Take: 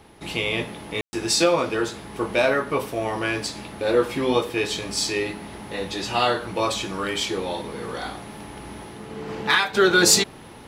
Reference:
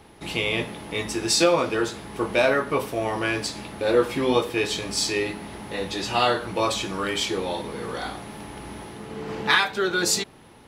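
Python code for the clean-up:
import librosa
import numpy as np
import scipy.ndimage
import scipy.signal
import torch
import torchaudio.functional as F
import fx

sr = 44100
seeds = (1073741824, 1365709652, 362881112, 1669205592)

y = fx.fix_declip(x, sr, threshold_db=-6.5)
y = fx.fix_ambience(y, sr, seeds[0], print_start_s=10.16, print_end_s=10.66, start_s=1.01, end_s=1.13)
y = fx.gain(y, sr, db=fx.steps((0.0, 0.0), (9.74, -7.0)))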